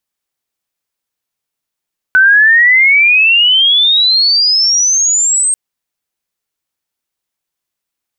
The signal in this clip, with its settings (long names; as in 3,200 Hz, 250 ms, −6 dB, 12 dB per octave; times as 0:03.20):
glide logarithmic 1,500 Hz → 8,500 Hz −3.5 dBFS → −9 dBFS 3.39 s